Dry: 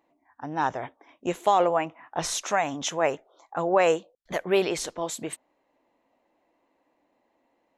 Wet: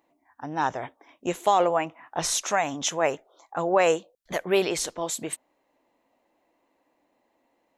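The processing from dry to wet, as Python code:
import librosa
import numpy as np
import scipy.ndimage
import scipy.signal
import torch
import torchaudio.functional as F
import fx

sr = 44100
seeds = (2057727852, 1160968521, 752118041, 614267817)

y = fx.high_shelf(x, sr, hz=4900.0, db=6.0)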